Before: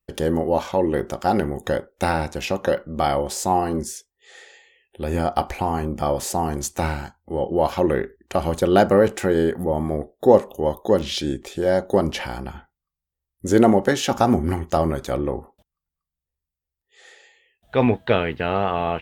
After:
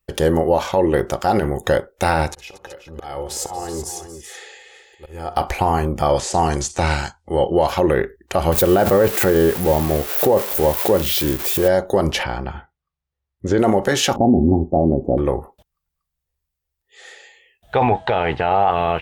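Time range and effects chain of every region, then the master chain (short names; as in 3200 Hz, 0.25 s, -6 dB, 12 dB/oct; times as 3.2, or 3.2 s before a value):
2.3–5.35 auto swell 0.775 s + comb 2.4 ms, depth 44% + tapped delay 64/232/234/378 ms -14.5/-17/-17/-10 dB
6.09–7.67 de-esser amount 95% + LPF 8300 Hz 24 dB/oct + high shelf 2500 Hz +11.5 dB
8.52–11.68 switching spikes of -16.5 dBFS + bell 6800 Hz -9.5 dB 2.4 oct + backwards sustainer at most 120 dB/s
12.23–13.59 HPF 49 Hz + air absorption 170 m
14.16–15.18 elliptic low-pass 770 Hz, stop band 50 dB + bell 250 Hz +12.5 dB 1 oct
17.75–18.71 bell 800 Hz +14.5 dB 0.5 oct + transient shaper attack -3 dB, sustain +3 dB + steep low-pass 9100 Hz 48 dB/oct
whole clip: bell 240 Hz -6.5 dB 0.81 oct; limiter -13.5 dBFS; gain +7 dB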